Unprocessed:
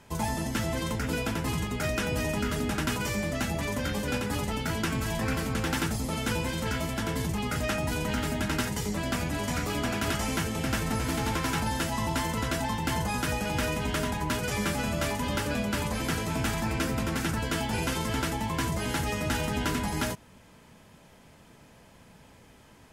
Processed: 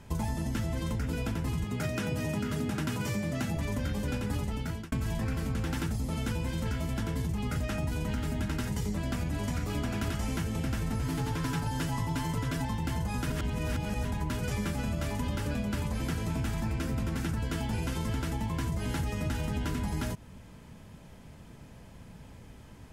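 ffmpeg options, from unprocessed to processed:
-filter_complex "[0:a]asettb=1/sr,asplit=3[a][b][c];[a]atrim=end=1.644[d];[b]atrim=start=1.64:end=3.57,asetpts=PTS-STARTPTS,afade=t=in:d=0.004:c=qsin,afade=t=out:st=1.926:d=0.004:c=qsin,highpass=f=95:w=0.5412,highpass=f=95:w=1.3066[e];[c]atrim=start=3.566[f];[d][e]acrossfade=d=0.004:c1=hsin:c2=qsin[g];[g][f]acrossfade=d=0.004:c1=qsin:c2=hsin,asettb=1/sr,asplit=3[h][i][j];[h]atrim=end=11.024[k];[i]atrim=start=11.02:end=12.65,asetpts=PTS-STARTPTS,afade=t=in:d=0.004:c=qsin,afade=t=out:st=1.626:d=0.004:c=qsin,aecho=1:1:7:0.65,atrim=end_sample=71883[l];[j]atrim=start=12.646[m];[k][l]acrossfade=d=0.004:c1=hsin:c2=qsin[n];[n][m]acrossfade=d=0.004:c1=qsin:c2=hsin,asplit=4[o][p][q][r];[o]atrim=end=4.92,asetpts=PTS-STARTPTS,afade=t=out:st=4.4:d=0.52[s];[p]atrim=start=4.92:end=13.302,asetpts=PTS-STARTPTS,afade=t=in:d=0.004:c=hsin[t];[q]atrim=start=13.298:end=14.052,asetpts=PTS-STARTPTS,areverse[u];[r]atrim=start=14.048[v];[s][t]concat=n=2:v=0:a=1[w];[w][u]acrossfade=d=0.004:c1=hsin:c2=hsin[x];[x][v]acrossfade=d=0.004:c1=hsin:c2=hsin,lowshelf=f=220:g=12,acompressor=threshold=-27dB:ratio=6,volume=-1.5dB"

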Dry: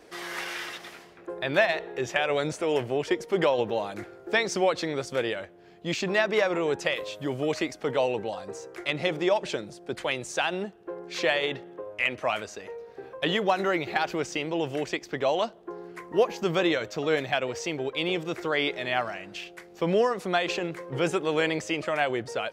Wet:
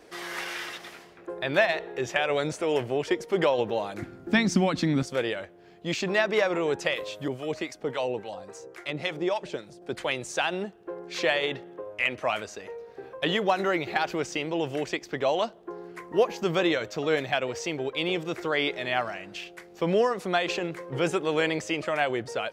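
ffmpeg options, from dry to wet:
-filter_complex "[0:a]asettb=1/sr,asplit=3[a][b][c];[a]atrim=end=4.024[d];[b]atrim=start=4.02:end=5.03,asetpts=PTS-STARTPTS,afade=t=in:d=0.004:c=qsin,afade=t=out:st=1.006:d=0.004:c=qsin,lowshelf=f=330:t=q:w=3:g=9.5[e];[c]atrim=start=5.026[f];[d][e]acrossfade=d=0.004:c1=hsin:c2=qsin[g];[g][f]acrossfade=d=0.004:c1=qsin:c2=hsin,asettb=1/sr,asplit=3[h][i][j];[h]atrim=end=7.284[k];[i]atrim=start=7.28:end=9.82,asetpts=PTS-STARTPTS,afade=t=in:d=0.004:c=qsin,afade=t=out:st=2.536:d=0.004:c=qsin,acrossover=split=770[l][m];[l]aeval=exprs='val(0)*(1-0.7/2+0.7/2*cos(2*PI*3.6*n/s))':c=same[n];[m]aeval=exprs='val(0)*(1-0.7/2-0.7/2*cos(2*PI*3.6*n/s))':c=same[o];[n][o]amix=inputs=2:normalize=0[p];[j]atrim=start=9.816[q];[k][p]acrossfade=d=0.004:c1=hsin:c2=qsin[r];[r][q]acrossfade=d=0.004:c1=qsin:c2=hsin"

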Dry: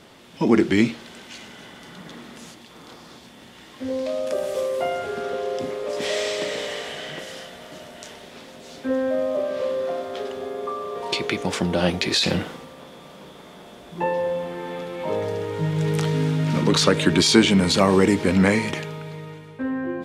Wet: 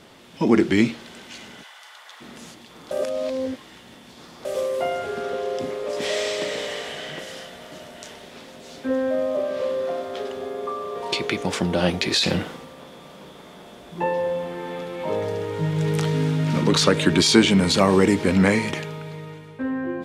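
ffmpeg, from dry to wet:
-filter_complex "[0:a]asplit=3[a][b][c];[a]afade=t=out:st=1.62:d=0.02[d];[b]highpass=f=750:w=0.5412,highpass=f=750:w=1.3066,afade=t=in:st=1.62:d=0.02,afade=t=out:st=2.2:d=0.02[e];[c]afade=t=in:st=2.2:d=0.02[f];[d][e][f]amix=inputs=3:normalize=0,asplit=3[g][h][i];[g]atrim=end=2.912[j];[h]atrim=start=2.908:end=4.452,asetpts=PTS-STARTPTS,areverse[k];[i]atrim=start=4.448[l];[j][k]acrossfade=d=0.004:c1=hsin:c2=hsin[m];[m][l]acrossfade=d=0.004:c1=hsin:c2=hsin"

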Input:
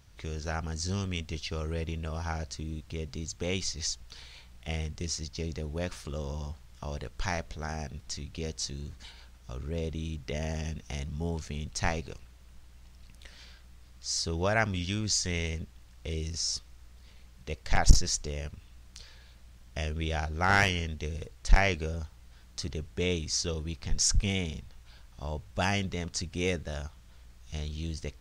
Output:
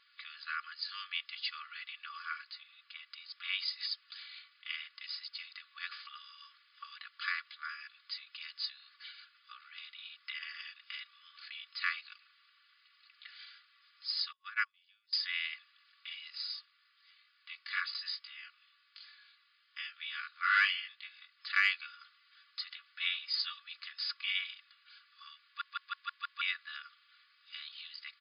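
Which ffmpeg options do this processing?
-filter_complex "[0:a]asettb=1/sr,asplit=3[a][b][c];[a]atrim=end=2.224[d];[b]atrim=start=2.22:end=3.16,asetpts=PTS-STARTPTS,afade=t=in:d=0.004:c=qsin,afade=t=out:st=0.936:d=0.004:c=qsin,highshelf=f=4.1k:g=-5[e];[c]atrim=start=3.156[f];[d][e]acrossfade=d=0.004:c1=hsin:c2=qsin[g];[g][f]acrossfade=d=0.004:c1=qsin:c2=hsin,asettb=1/sr,asplit=3[h][i][j];[h]atrim=end=14.324[k];[i]atrim=start=14.32:end=15.13,asetpts=PTS-STARTPTS,afade=t=in:d=0.004:c=qsin,afade=t=out:st=0.806:d=0.004:c=qsin,agate=range=-31dB:threshold=-25dB:ratio=16:release=100:detection=peak[l];[j]atrim=start=15.126[m];[k][l]acrossfade=d=0.004:c1=hsin:c2=qsin[n];[n][m]acrossfade=d=0.004:c1=qsin:c2=hsin,asplit=3[o][p][q];[o]afade=t=out:st=16.51:d=0.02[r];[p]flanger=delay=19:depth=3.9:speed=1.1,afade=t=in:st=16.51:d=0.02,afade=t=out:st=21.38:d=0.02[s];[q]afade=t=in:st=21.38:d=0.02[t];[r][s][t]amix=inputs=3:normalize=0,asettb=1/sr,asplit=3[u][v][w];[u]atrim=end=22.654[x];[v]atrim=start=22.65:end=23.56,asetpts=PTS-STARTPTS,afade=t=in:d=0.004:c=qsin,afade=t=out:st=0.906:d=0.004:c=qsin,asplit=2[y][z];[z]adelay=14,volume=-7.5dB[aa];[y][aa]amix=inputs=2:normalize=0,atrim=end_sample=40131[ab];[w]atrim=start=23.556[ac];[x][ab]acrossfade=d=0.004:c1=hsin:c2=qsin[ad];[ad][ac]acrossfade=d=0.004:c1=qsin:c2=hsin,asplit=7[ae][af][ag][ah][ai][aj][ak];[ae]atrim=end=25.612[al];[af]atrim=start=25.448:end=25.612[am];[ag]atrim=start=25.448:end=25.612[an];[ah]atrim=start=25.448:end=25.612[ao];[ai]atrim=start=25.448:end=25.612[ap];[aj]atrim=start=25.448:end=25.612[aq];[ak]atrim=start=26.408[ar];[al][am]acrossfade=d=0.004:c1=hsin:c2=hsin[as];[as][an]acrossfade=d=0.004:c1=hsin:c2=hsin[at];[at][ao]acrossfade=d=0.004:c1=hsin:c2=hsin[au];[au][ap]acrossfade=d=0.004:c1=hsin:c2=hsin[av];[av][aq]acrossfade=d=0.004:c1=hsin:c2=hsin[aw];[aw][ar]acrossfade=d=0.004:c1=hsin:c2=hsin,afftfilt=real='re*between(b*sr/4096,1100,5100)':imag='im*between(b*sr/4096,1100,5100)':win_size=4096:overlap=0.75,aecho=1:1:3.5:0.87,acontrast=58,volume=-7dB"

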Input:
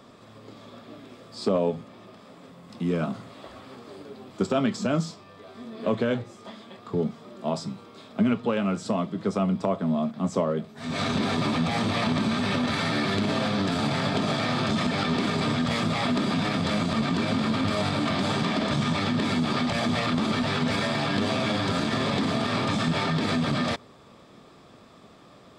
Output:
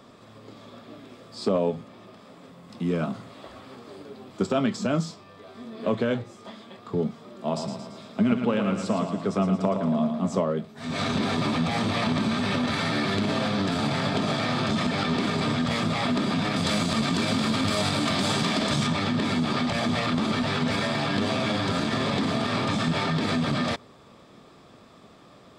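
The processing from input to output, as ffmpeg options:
-filter_complex "[0:a]asettb=1/sr,asplit=3[a][b][c];[a]atrim=end=7.374[d];[b]atrim=start=7.37:end=10.39,asetpts=PTS-STARTPTS,afade=t=in:d=0.004:c=qsin,afade=t=out:st=3.016:d=0.004:c=qsin,aecho=1:1:113|226|339|452|565|678|791:0.447|0.255|0.145|0.0827|0.0472|0.0269|0.0153,atrim=end_sample=133182[e];[c]atrim=start=10.386[f];[d][e]acrossfade=d=0.004:c1=hsin:c2=qsin[g];[g][f]acrossfade=d=0.004:c1=qsin:c2=hsin,asettb=1/sr,asplit=3[h][i][j];[h]atrim=end=16.564[k];[i]atrim=start=16.56:end=18.87,asetpts=PTS-STARTPTS,afade=t=in:d=0.004:c=qsin,afade=t=out:st=2.306:d=0.004:c=qsin,highshelf=f=4.8k:g=12[l];[j]atrim=start=18.866[m];[k][l]acrossfade=d=0.004:c1=hsin:c2=qsin[n];[n][m]acrossfade=d=0.004:c1=qsin:c2=hsin"

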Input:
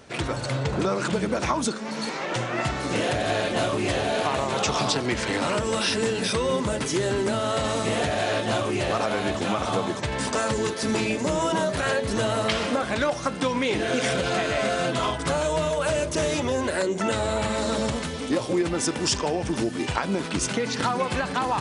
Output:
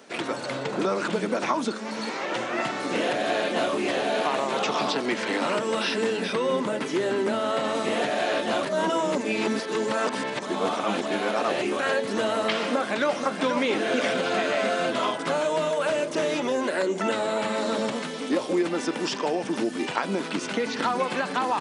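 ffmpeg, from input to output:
-filter_complex "[0:a]asettb=1/sr,asplit=3[a][b][c];[a]atrim=end=6.174[d];[b]atrim=start=6.17:end=7.75,asetpts=PTS-STARTPTS,afade=t=in:d=0.004:c=qsin,afade=t=out:st=1.576:d=0.004:c=qsin,bass=f=250:g=1,treble=f=4k:g=-7[e];[c]atrim=start=7.746[f];[d][e]acrossfade=d=0.004:c1=hsin:c2=qsin[g];[g][f]acrossfade=d=0.004:c1=qsin:c2=hsin,asplit=2[h][i];[i]afade=t=in:st=12.61:d=0.01,afade=t=out:st=13.16:d=0.01,aecho=0:1:480|960|1440|1920|2400|2880|3360|3840|4320|4800|5280|5760:0.446684|0.335013|0.25126|0.188445|0.141333|0.106|0.0795001|0.0596251|0.0447188|0.0335391|0.0251543|0.0188657[j];[h][j]amix=inputs=2:normalize=0,asplit=3[k][l][m];[k]atrim=end=8.632[n];[l]atrim=start=8.628:end=11.792,asetpts=PTS-STARTPTS,areverse[o];[m]atrim=start=11.788[p];[n][o]acrossfade=d=0.004:c1=hsin:c2=hsin[q];[q][p]acrossfade=d=0.004:c1=hsin:c2=hsin,acrossover=split=4300[r][s];[s]acompressor=threshold=-43dB:ratio=4:attack=1:release=60[t];[r][t]amix=inputs=2:normalize=0,highpass=f=200:w=0.5412,highpass=f=200:w=1.3066"

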